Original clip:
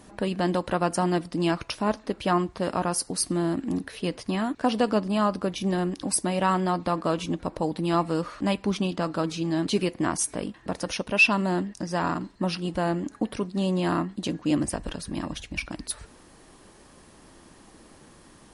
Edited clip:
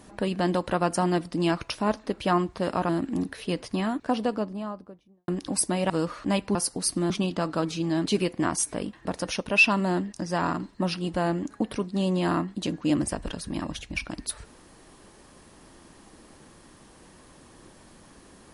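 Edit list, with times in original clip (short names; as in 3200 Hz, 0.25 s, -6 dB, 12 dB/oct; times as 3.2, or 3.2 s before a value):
2.89–3.44 move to 8.71
4.22–5.83 studio fade out
6.45–8.06 cut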